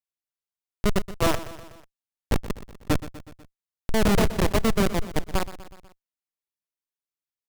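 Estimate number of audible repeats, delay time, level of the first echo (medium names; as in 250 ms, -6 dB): 4, 123 ms, -15.0 dB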